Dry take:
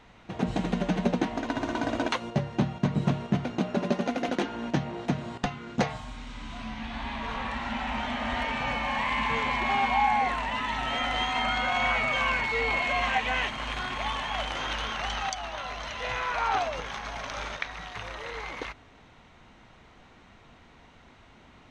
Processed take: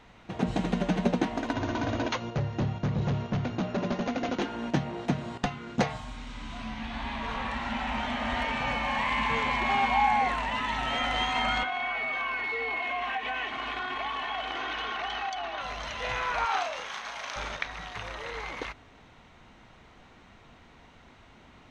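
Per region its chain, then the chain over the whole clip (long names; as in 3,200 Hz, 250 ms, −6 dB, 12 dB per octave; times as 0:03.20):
0:01.53–0:04.42: parametric band 100 Hz +12 dB 0.57 octaves + gain into a clipping stage and back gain 24.5 dB + linear-phase brick-wall low-pass 7,100 Hz
0:11.63–0:15.61: three-way crossover with the lows and the highs turned down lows −16 dB, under 160 Hz, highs −17 dB, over 4,400 Hz + comb filter 2.7 ms, depth 71% + downward compressor 4 to 1, threshold −29 dBFS
0:16.45–0:17.36: high-pass filter 950 Hz 6 dB per octave + double-tracking delay 36 ms −5 dB
whole clip: no processing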